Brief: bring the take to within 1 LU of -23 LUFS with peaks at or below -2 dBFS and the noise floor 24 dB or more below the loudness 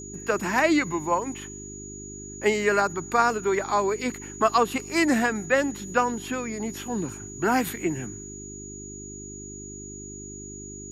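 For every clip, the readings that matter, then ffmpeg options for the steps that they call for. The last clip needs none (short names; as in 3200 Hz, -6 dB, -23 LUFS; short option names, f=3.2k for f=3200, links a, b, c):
hum 50 Hz; harmonics up to 400 Hz; hum level -40 dBFS; steady tone 6800 Hz; tone level -40 dBFS; loudness -25.0 LUFS; peak -7.5 dBFS; loudness target -23.0 LUFS
-> -af "bandreject=f=50:t=h:w=4,bandreject=f=100:t=h:w=4,bandreject=f=150:t=h:w=4,bandreject=f=200:t=h:w=4,bandreject=f=250:t=h:w=4,bandreject=f=300:t=h:w=4,bandreject=f=350:t=h:w=4,bandreject=f=400:t=h:w=4"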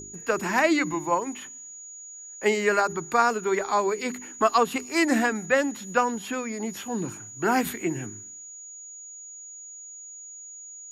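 hum none; steady tone 6800 Hz; tone level -40 dBFS
-> -af "bandreject=f=6.8k:w=30"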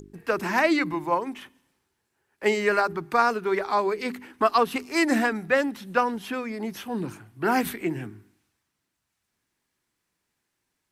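steady tone none; loudness -25.5 LUFS; peak -7.5 dBFS; loudness target -23.0 LUFS
-> -af "volume=2.5dB"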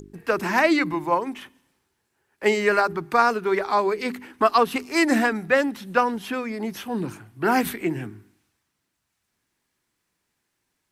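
loudness -23.0 LUFS; peak -5.0 dBFS; noise floor -77 dBFS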